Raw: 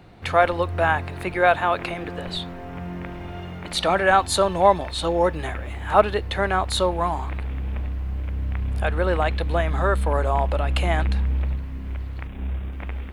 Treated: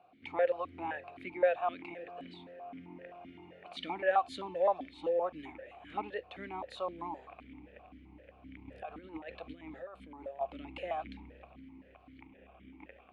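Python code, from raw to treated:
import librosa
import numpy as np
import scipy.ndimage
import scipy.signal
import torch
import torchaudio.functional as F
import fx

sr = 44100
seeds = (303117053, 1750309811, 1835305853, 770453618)

y = fx.over_compress(x, sr, threshold_db=-24.0, ratio=-0.5, at=(8.67, 10.41))
y = fx.vowel_held(y, sr, hz=7.7)
y = y * librosa.db_to_amplitude(-3.5)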